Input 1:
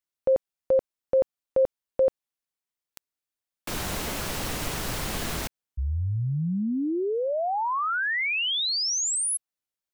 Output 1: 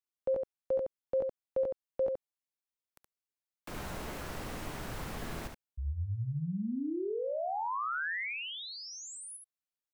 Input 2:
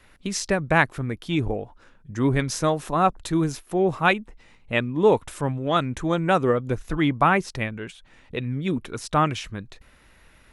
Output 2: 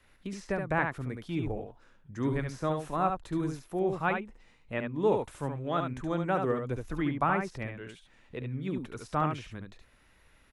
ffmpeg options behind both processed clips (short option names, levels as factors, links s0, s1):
-filter_complex "[0:a]acrossover=split=430|2200[s0][s1][s2];[s2]acompressor=threshold=0.0141:ratio=6:attack=0.27:release=216:knee=6:detection=peak[s3];[s0][s1][s3]amix=inputs=3:normalize=0,aecho=1:1:71:0.531,volume=0.355"